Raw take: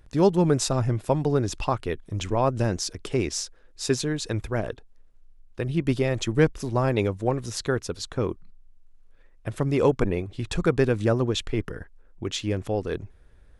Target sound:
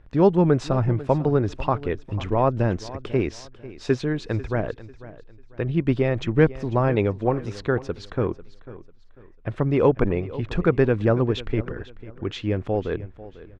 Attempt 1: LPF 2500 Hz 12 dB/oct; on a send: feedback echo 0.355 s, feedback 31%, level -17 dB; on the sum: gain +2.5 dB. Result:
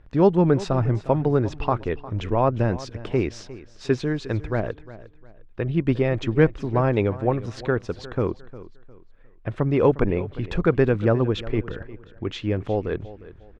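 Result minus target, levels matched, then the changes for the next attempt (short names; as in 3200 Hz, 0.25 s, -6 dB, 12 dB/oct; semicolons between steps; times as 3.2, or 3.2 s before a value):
echo 0.14 s early
change: feedback echo 0.495 s, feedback 31%, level -17 dB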